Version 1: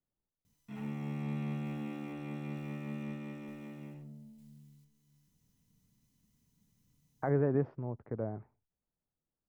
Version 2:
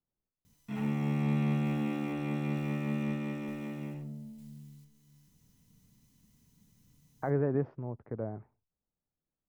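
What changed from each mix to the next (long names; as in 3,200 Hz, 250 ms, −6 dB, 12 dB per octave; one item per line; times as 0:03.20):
background +7.5 dB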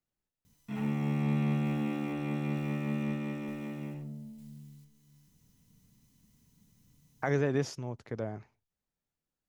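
speech: remove Bessel low-pass filter 1,000 Hz, order 4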